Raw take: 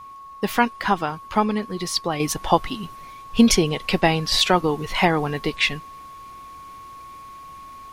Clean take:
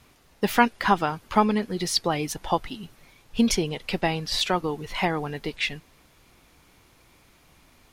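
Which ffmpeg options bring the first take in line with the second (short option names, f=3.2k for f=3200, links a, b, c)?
-af "bandreject=f=1.1k:w=30,asetnsamples=n=441:p=0,asendcmd='2.2 volume volume -6.5dB',volume=0dB"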